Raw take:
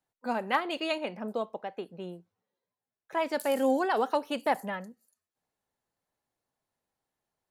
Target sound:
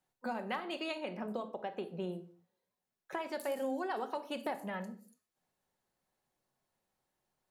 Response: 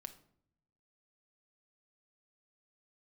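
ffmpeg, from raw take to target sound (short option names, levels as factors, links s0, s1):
-filter_complex "[0:a]acompressor=threshold=0.0141:ratio=6[s0];[1:a]atrim=start_sample=2205,afade=t=out:st=0.3:d=0.01,atrim=end_sample=13671[s1];[s0][s1]afir=irnorm=-1:irlink=0,volume=2.24"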